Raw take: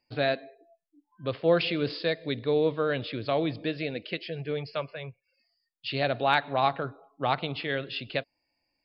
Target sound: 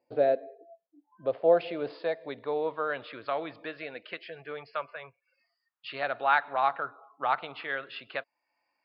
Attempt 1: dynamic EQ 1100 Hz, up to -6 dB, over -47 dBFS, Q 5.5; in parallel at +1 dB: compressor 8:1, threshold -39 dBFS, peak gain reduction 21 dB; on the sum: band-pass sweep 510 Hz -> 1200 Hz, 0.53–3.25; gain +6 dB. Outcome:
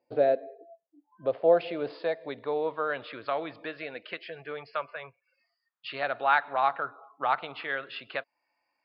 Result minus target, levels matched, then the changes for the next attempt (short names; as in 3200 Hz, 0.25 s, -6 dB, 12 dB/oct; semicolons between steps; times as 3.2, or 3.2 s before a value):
compressor: peak gain reduction -8 dB
change: compressor 8:1, threshold -48 dBFS, peak gain reduction 28.5 dB